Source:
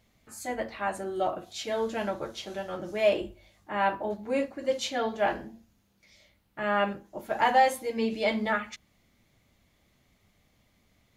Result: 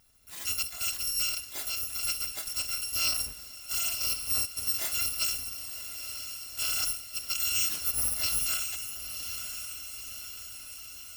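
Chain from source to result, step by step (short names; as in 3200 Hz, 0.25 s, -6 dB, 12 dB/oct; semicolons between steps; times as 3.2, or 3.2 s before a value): FFT order left unsorted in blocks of 256 samples; 1.45–2.03 compressor, threshold -34 dBFS, peak gain reduction 9 dB; diffused feedback echo 0.992 s, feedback 60%, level -14 dB; limiter -23 dBFS, peak gain reduction 12 dB; gain +2.5 dB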